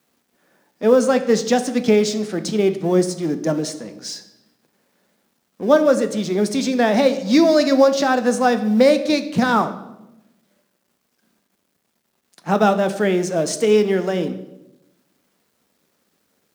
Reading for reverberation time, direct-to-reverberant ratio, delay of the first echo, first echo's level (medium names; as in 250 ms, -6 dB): 0.95 s, 9.0 dB, no echo, no echo